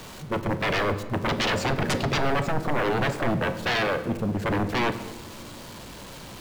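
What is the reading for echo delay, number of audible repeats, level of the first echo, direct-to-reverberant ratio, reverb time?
no echo, no echo, no echo, 9.0 dB, 1.2 s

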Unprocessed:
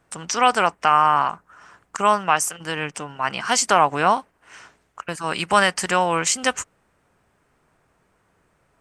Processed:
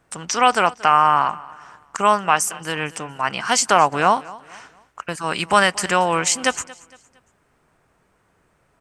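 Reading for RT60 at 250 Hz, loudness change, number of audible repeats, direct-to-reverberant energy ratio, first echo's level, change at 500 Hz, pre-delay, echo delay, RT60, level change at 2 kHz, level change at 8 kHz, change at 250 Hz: no reverb, +1.5 dB, 2, no reverb, -21.0 dB, +1.5 dB, no reverb, 230 ms, no reverb, +1.5 dB, +1.5 dB, +1.5 dB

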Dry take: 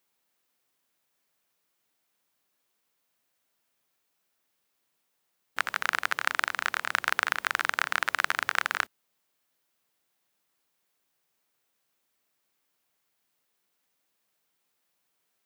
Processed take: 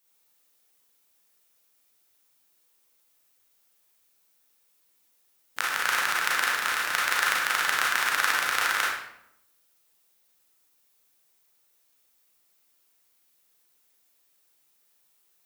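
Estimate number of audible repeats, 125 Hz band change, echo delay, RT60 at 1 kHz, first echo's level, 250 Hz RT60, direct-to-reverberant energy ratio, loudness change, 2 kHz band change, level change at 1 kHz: no echo, no reading, no echo, 0.75 s, no echo, 1.0 s, -5.0 dB, +3.5 dB, +3.0 dB, +3.0 dB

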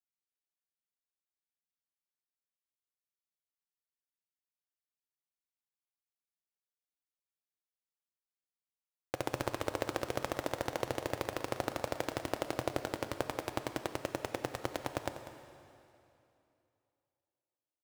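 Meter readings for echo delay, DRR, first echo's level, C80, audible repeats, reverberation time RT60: 195 ms, 7.5 dB, -13.5 dB, 8.5 dB, 1, 2.8 s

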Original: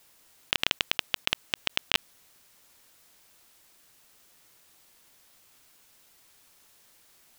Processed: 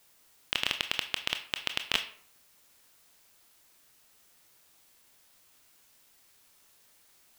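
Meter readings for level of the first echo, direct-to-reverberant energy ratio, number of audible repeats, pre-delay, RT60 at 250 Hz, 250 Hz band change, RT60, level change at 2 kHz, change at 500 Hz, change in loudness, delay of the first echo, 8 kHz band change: no echo, 7.0 dB, no echo, 21 ms, 0.55 s, -4.0 dB, 0.60 s, -3.0 dB, -3.5 dB, -3.5 dB, no echo, -2.5 dB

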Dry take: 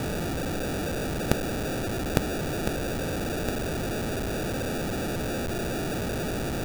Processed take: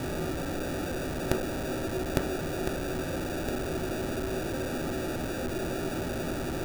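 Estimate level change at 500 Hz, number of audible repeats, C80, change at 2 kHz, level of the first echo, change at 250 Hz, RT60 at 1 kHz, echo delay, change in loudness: -1.5 dB, no echo, 16.0 dB, -3.0 dB, no echo, -2.0 dB, 0.45 s, no echo, -2.5 dB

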